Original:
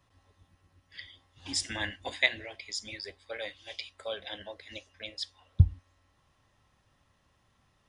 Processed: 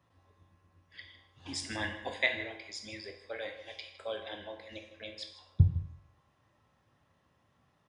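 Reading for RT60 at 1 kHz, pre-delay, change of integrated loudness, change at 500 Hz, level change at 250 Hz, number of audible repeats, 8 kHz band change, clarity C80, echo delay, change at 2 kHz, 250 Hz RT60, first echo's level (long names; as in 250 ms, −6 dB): 0.70 s, 11 ms, −2.5 dB, +0.5 dB, +1.0 dB, 1, −7.0 dB, 10.5 dB, 157 ms, −2.0 dB, 0.60 s, −16.0 dB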